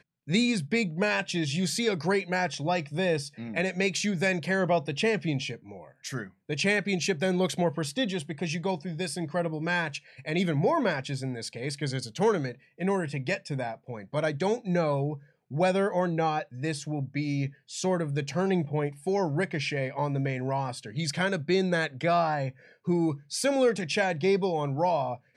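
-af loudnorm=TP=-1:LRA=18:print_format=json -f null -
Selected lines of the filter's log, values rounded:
"input_i" : "-28.5",
"input_tp" : "-13.0",
"input_lra" : "2.3",
"input_thresh" : "-38.6",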